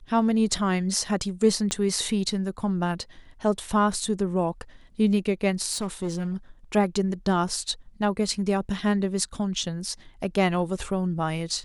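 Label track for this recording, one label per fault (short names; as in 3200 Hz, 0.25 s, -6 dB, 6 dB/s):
1.710000	1.710000	pop -13 dBFS
5.720000	6.340000	clipped -24 dBFS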